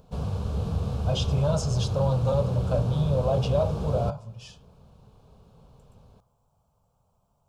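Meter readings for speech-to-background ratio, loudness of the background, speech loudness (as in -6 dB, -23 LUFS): 3.5 dB, -30.5 LUFS, -27.0 LUFS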